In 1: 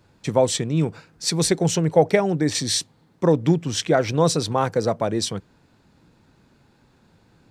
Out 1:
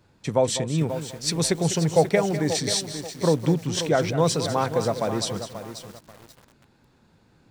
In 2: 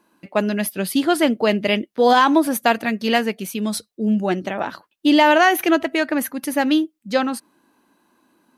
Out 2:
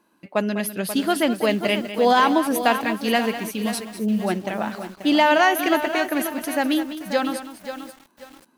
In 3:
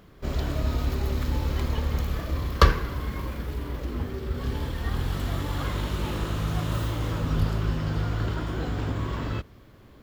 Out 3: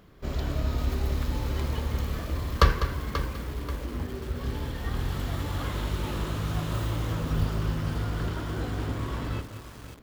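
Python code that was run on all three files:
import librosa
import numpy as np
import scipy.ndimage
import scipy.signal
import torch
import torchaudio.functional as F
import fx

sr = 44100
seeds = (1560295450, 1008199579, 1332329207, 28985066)

y = fx.dynamic_eq(x, sr, hz=330.0, q=3.7, threshold_db=-34.0, ratio=4.0, max_db=-3)
y = y + 10.0 ** (-12.0 / 20.0) * np.pad(y, (int(200 * sr / 1000.0), 0))[:len(y)]
y = fx.echo_crushed(y, sr, ms=535, feedback_pct=35, bits=6, wet_db=-10.0)
y = y * 10.0 ** (-2.5 / 20.0)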